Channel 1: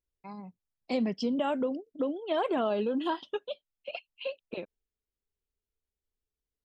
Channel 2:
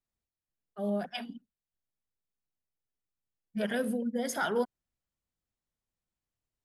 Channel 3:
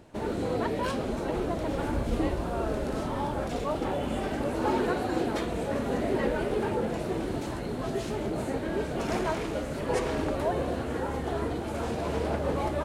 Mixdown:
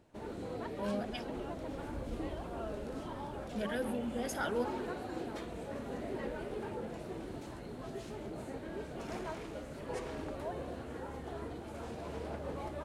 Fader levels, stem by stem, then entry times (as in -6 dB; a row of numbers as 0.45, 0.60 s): -19.0, -5.5, -12.0 dB; 0.00, 0.00, 0.00 s